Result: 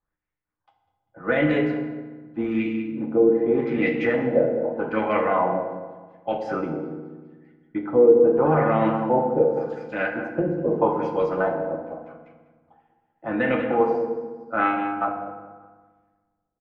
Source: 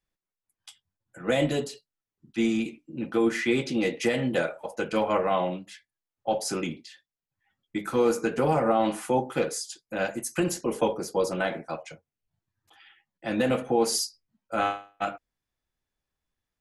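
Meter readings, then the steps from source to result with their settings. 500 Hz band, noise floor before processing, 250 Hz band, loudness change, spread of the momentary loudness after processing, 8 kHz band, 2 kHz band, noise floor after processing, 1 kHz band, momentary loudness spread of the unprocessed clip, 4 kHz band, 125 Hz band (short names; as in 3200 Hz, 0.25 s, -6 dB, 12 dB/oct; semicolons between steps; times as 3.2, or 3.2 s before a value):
+6.5 dB, under -85 dBFS, +4.0 dB, +5.0 dB, 15 LU, under -30 dB, +4.0 dB, -79 dBFS, +4.5 dB, 12 LU, n/a, +4.0 dB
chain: air absorption 66 m; on a send: feedback echo 0.198 s, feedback 24%, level -9 dB; on the sum: LFO low-pass sine 0.83 Hz 490–2200 Hz; FDN reverb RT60 1.4 s, low-frequency decay 1.35×, high-frequency decay 0.65×, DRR 3.5 dB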